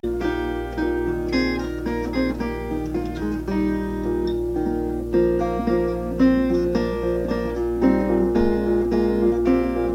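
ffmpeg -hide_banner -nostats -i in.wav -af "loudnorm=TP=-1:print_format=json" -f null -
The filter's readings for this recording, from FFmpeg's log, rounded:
"input_i" : "-21.8",
"input_tp" : "-5.6",
"input_lra" : "3.8",
"input_thresh" : "-31.8",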